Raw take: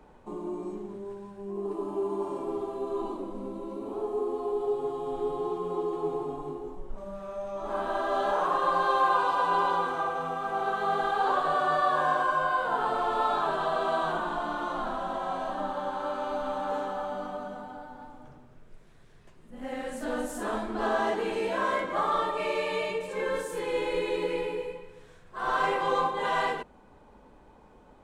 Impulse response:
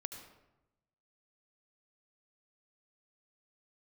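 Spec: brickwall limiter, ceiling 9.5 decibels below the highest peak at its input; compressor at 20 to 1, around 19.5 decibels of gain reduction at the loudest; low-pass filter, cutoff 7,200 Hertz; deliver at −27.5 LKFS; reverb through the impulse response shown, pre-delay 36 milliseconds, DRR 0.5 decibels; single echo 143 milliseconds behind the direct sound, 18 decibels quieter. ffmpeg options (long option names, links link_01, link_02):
-filter_complex "[0:a]lowpass=7200,acompressor=threshold=-41dB:ratio=20,alimiter=level_in=18dB:limit=-24dB:level=0:latency=1,volume=-18dB,aecho=1:1:143:0.126,asplit=2[link_01][link_02];[1:a]atrim=start_sample=2205,adelay=36[link_03];[link_02][link_03]afir=irnorm=-1:irlink=0,volume=1.5dB[link_04];[link_01][link_04]amix=inputs=2:normalize=0,volume=20dB"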